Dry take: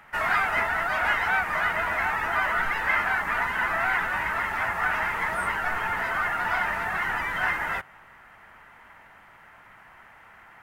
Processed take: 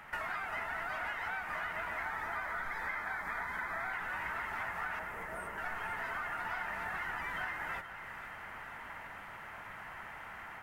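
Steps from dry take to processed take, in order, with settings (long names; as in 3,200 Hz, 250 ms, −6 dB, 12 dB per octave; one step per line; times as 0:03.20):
automatic gain control gain up to 3.5 dB
0:02.02–0:03.93: Butterworth band-reject 2,800 Hz, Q 4.4
downward compressor 8 to 1, threshold −37 dBFS, peak gain reduction 20 dB
0:04.99–0:05.58: octave-band graphic EQ 500/1,000/2,000/4,000 Hz +5/−4/−4/−11 dB
echo with a time of its own for lows and highs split 1,400 Hz, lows 142 ms, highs 481 ms, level −10.5 dB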